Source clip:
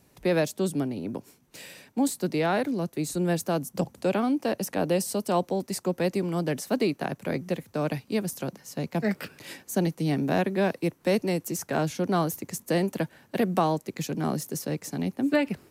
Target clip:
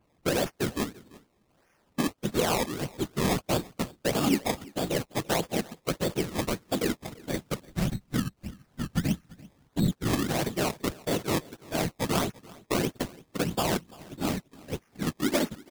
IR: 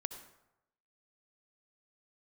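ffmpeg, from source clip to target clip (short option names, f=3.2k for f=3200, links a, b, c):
-filter_complex "[0:a]aeval=exprs='val(0)+0.5*0.0355*sgn(val(0))':c=same,lowpass=f=6.1k:w=0.5412,lowpass=f=6.1k:w=1.3066,agate=range=-33dB:threshold=-24dB:ratio=16:detection=peak,asplit=3[a][b][c];[a]afade=t=out:st=7.62:d=0.02[d];[b]asubboost=boost=12:cutoff=120,afade=t=in:st=7.62:d=0.02,afade=t=out:st=9.9:d=0.02[e];[c]afade=t=in:st=9.9:d=0.02[f];[d][e][f]amix=inputs=3:normalize=0,acontrast=74,alimiter=limit=-13.5dB:level=0:latency=1:release=403,afftfilt=real='hypot(re,im)*cos(2*PI*random(0))':imag='hypot(re,im)*sin(2*PI*random(1))':win_size=512:overlap=0.75,acrusher=samples=21:mix=1:aa=0.000001:lfo=1:lforange=21:lforate=1.6,aecho=1:1:339:0.0794,adynamicequalizer=threshold=0.00631:dfrequency=3100:dqfactor=0.7:tfrequency=3100:tqfactor=0.7:attack=5:release=100:ratio=0.375:range=2:mode=boostabove:tftype=highshelf"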